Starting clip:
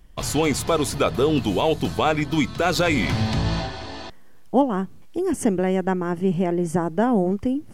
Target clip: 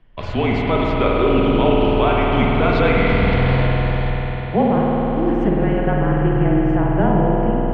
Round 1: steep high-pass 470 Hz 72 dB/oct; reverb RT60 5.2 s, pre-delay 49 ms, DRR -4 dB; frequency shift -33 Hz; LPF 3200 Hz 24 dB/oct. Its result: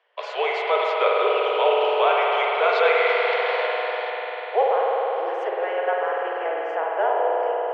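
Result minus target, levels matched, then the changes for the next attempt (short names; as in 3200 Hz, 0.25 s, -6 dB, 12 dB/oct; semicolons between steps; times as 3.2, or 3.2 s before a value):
500 Hz band +2.5 dB
remove: steep high-pass 470 Hz 72 dB/oct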